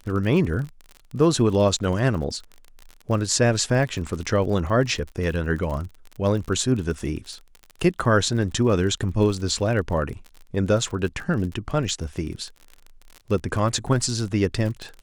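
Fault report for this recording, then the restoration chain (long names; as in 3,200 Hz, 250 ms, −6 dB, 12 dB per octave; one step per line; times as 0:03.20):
surface crackle 41 per second −31 dBFS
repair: click removal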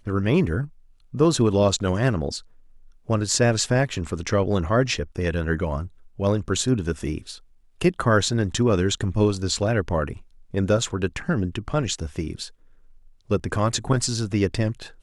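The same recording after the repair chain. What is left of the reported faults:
none of them is left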